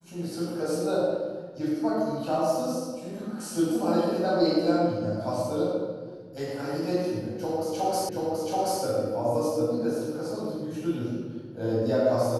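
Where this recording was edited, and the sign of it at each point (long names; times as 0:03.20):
0:08.09: the same again, the last 0.73 s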